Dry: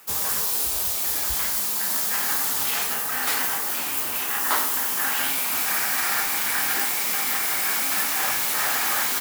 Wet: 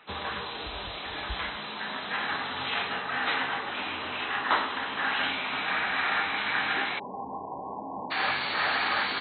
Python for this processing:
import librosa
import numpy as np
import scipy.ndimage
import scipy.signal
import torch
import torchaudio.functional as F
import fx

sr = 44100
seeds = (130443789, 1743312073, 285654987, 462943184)

y = fx.brickwall_lowpass(x, sr, high_hz=fx.steps((0.0, 4100.0), (6.98, 1100.0), (8.1, 4600.0)))